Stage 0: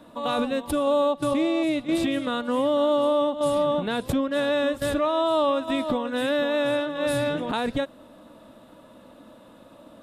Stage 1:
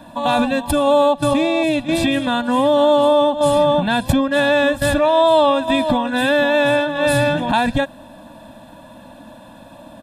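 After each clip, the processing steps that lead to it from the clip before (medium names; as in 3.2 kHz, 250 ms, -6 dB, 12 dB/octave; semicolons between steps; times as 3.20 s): comb 1.2 ms, depth 87%; trim +7.5 dB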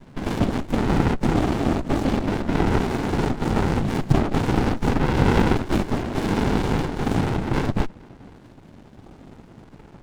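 LFO notch saw up 0.36 Hz 550–5900 Hz; noise-vocoded speech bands 6; sliding maximum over 65 samples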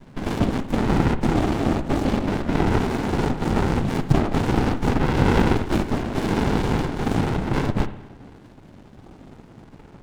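reverberation, pre-delay 58 ms, DRR 12 dB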